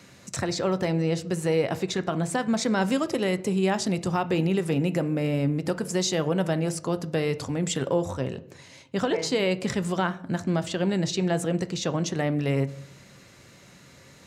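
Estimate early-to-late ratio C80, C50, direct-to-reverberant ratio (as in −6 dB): 21.0 dB, 17.0 dB, 11.0 dB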